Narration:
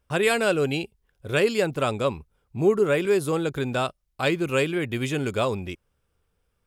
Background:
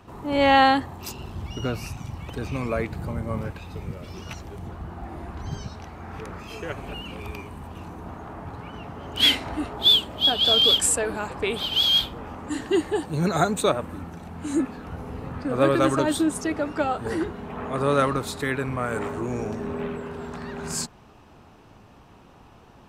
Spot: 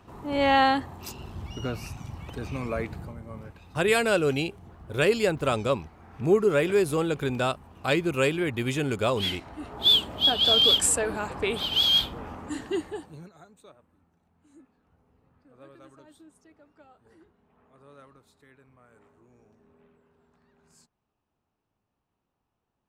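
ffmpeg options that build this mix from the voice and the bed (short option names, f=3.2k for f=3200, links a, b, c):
-filter_complex "[0:a]adelay=3650,volume=-1dB[a];[1:a]volume=6.5dB,afade=t=out:st=2.91:d=0.24:silence=0.398107,afade=t=in:st=9.56:d=0.41:silence=0.298538,afade=t=out:st=12.21:d=1.09:silence=0.0334965[b];[a][b]amix=inputs=2:normalize=0"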